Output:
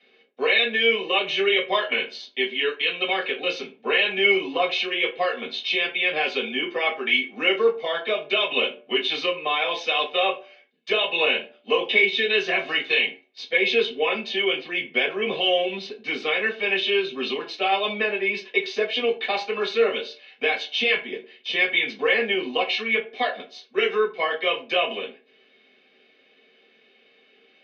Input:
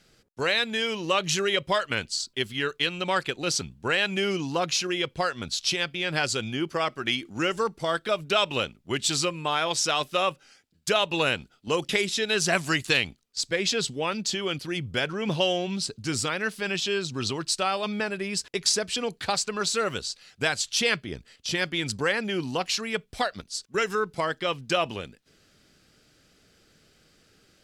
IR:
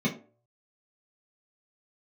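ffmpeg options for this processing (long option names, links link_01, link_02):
-filter_complex "[0:a]alimiter=limit=-16dB:level=0:latency=1:release=23,highpass=frequency=490:width=0.5412,highpass=frequency=490:width=1.3066,equalizer=frequency=590:width_type=q:width=4:gain=-9,equalizer=frequency=1200:width_type=q:width=4:gain=-10,equalizer=frequency=2900:width_type=q:width=4:gain=5,lowpass=frequency=3500:width=0.5412,lowpass=frequency=3500:width=1.3066[link_01];[1:a]atrim=start_sample=2205[link_02];[link_01][link_02]afir=irnorm=-1:irlink=0"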